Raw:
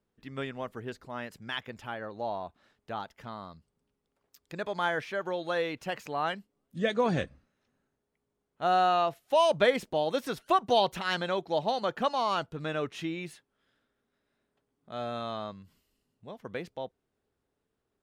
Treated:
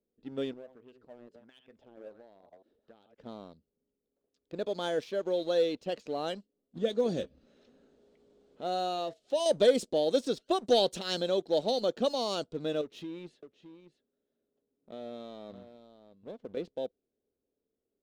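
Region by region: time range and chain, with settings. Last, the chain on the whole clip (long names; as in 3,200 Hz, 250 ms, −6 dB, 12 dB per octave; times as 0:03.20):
0:00.53–0:03.18: delay that plays each chunk backwards 131 ms, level −10.5 dB + downward compressor 3 to 1, threshold −56 dBFS + auto-filter bell 1.4 Hz 320–2,900 Hz +12 dB
0:06.78–0:09.46: upward compression, threshold −36 dBFS + flanger 1 Hz, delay 4.1 ms, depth 1.7 ms, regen −82% + one half of a high-frequency compander encoder only
0:12.81–0:16.57: downward compressor 10 to 1, threshold −37 dBFS + single-tap delay 615 ms −9 dB
whole clip: low-pass that shuts in the quiet parts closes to 1,900 Hz, open at −22.5 dBFS; octave-band graphic EQ 125/250/500/1,000/2,000/4,000/8,000 Hz −5/+7/+10/−9/−9/+8/+12 dB; leveller curve on the samples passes 1; level −8 dB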